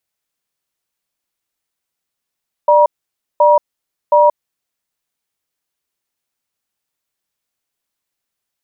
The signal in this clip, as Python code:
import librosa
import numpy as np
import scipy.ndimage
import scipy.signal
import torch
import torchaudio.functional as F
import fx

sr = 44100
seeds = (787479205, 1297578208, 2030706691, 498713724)

y = fx.cadence(sr, length_s=2.02, low_hz=594.0, high_hz=955.0, on_s=0.18, off_s=0.54, level_db=-9.0)